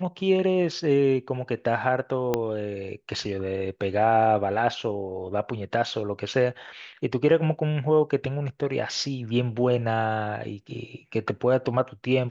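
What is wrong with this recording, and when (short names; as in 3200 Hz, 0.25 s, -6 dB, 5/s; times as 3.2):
2.34 pop -10 dBFS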